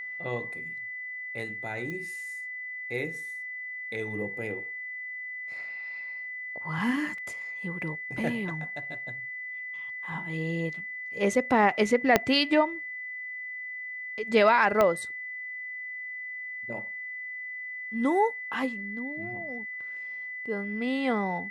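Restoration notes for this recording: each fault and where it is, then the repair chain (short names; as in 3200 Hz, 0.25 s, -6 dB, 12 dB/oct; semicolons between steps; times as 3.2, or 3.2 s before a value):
tone 2000 Hz -35 dBFS
1.9 pop -25 dBFS
7.18 gap 2.9 ms
12.16 pop -5 dBFS
14.81 pop -11 dBFS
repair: de-click; notch 2000 Hz, Q 30; interpolate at 7.18, 2.9 ms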